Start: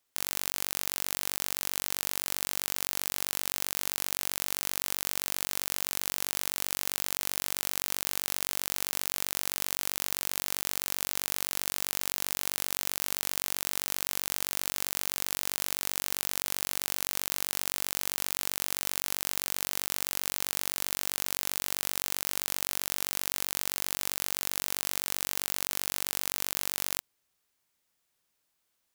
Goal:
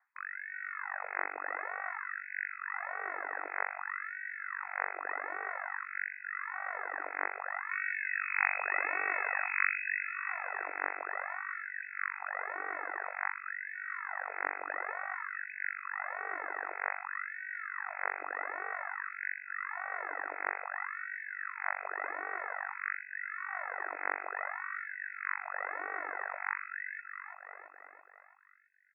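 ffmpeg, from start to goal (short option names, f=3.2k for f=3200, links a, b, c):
-filter_complex "[0:a]lowshelf=f=500:t=q:w=1.5:g=-13.5,asplit=3[a][b][c];[a]afade=t=out:st=7.69:d=0.02[d];[b]acontrast=66,afade=t=in:st=7.69:d=0.02,afade=t=out:st=9.95:d=0.02[e];[c]afade=t=in:st=9.95:d=0.02[f];[d][e][f]amix=inputs=3:normalize=0,asoftclip=type=tanh:threshold=-5.5dB,aphaser=in_gain=1:out_gain=1:delay=2.8:decay=0.67:speed=0.83:type=sinusoidal,aecho=1:1:334|668|1002|1336|1670|2004|2338:0.422|0.24|0.137|0.0781|0.0445|0.0254|0.0145,lowpass=f=2.2k:t=q:w=0.5098,lowpass=f=2.2k:t=q:w=0.6013,lowpass=f=2.2k:t=q:w=0.9,lowpass=f=2.2k:t=q:w=2.563,afreqshift=-2600,afftfilt=real='re*gte(b*sr/1024,260*pow(1500/260,0.5+0.5*sin(2*PI*0.53*pts/sr)))':imag='im*gte(b*sr/1024,260*pow(1500/260,0.5+0.5*sin(2*PI*0.53*pts/sr)))':win_size=1024:overlap=0.75,volume=2.5dB"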